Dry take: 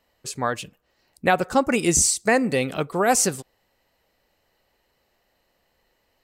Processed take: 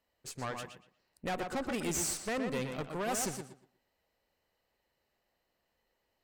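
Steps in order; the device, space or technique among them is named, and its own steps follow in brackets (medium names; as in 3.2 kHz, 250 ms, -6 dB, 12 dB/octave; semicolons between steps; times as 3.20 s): rockabilly slapback (valve stage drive 23 dB, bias 0.75; tape echo 120 ms, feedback 26%, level -4 dB, low-pass 3.6 kHz); trim -8 dB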